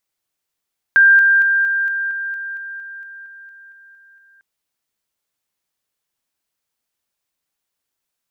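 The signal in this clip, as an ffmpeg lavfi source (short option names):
-f lavfi -i "aevalsrc='pow(10,(-6.5-3*floor(t/0.23))/20)*sin(2*PI*1590*t)':d=3.45:s=44100"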